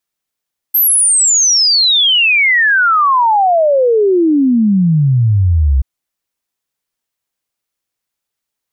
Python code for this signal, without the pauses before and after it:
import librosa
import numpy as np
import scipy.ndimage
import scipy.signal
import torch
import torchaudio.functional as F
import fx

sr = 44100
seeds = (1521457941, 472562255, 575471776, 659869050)

y = fx.ess(sr, length_s=5.08, from_hz=13000.0, to_hz=63.0, level_db=-7.5)